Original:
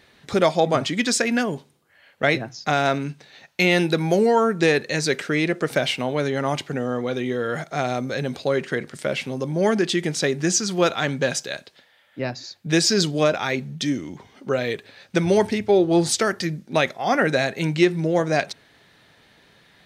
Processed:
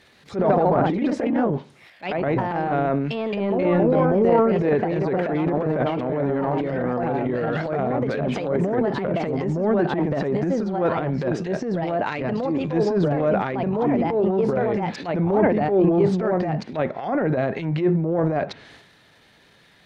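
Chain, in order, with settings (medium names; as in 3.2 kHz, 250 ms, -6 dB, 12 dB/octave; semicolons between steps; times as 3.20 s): ever faster or slower copies 128 ms, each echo +2 st, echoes 2; low-pass that closes with the level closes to 920 Hz, closed at -18 dBFS; transient shaper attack -11 dB, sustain +9 dB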